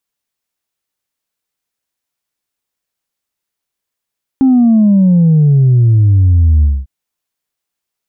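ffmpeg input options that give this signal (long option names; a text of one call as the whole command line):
ffmpeg -f lavfi -i "aevalsrc='0.531*clip((2.45-t)/0.23,0,1)*tanh(1.06*sin(2*PI*270*2.45/log(65/270)*(exp(log(65/270)*t/2.45)-1)))/tanh(1.06)':duration=2.45:sample_rate=44100" out.wav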